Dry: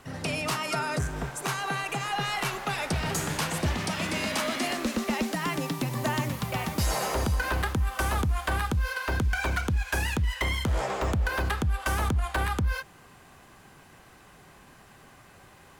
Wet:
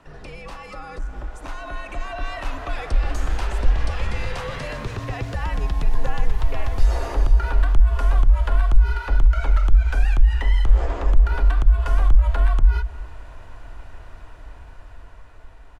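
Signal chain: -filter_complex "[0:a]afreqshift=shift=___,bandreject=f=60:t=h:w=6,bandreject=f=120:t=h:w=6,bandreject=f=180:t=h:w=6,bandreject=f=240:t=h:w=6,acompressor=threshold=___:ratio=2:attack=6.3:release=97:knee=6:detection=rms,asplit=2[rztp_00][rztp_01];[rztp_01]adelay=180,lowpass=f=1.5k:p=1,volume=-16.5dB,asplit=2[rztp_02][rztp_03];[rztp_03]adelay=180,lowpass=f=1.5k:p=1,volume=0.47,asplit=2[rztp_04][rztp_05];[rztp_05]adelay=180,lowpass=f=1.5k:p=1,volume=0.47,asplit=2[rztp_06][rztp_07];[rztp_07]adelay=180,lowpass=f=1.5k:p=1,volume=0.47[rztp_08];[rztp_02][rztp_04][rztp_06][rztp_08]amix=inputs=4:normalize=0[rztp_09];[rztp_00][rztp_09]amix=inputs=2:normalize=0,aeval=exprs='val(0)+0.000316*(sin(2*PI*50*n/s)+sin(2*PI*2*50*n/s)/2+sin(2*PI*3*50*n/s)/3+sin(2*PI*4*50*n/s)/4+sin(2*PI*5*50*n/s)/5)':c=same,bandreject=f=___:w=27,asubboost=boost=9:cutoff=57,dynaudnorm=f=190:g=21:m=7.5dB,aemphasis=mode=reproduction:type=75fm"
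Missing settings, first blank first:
-110, -39dB, 2.2k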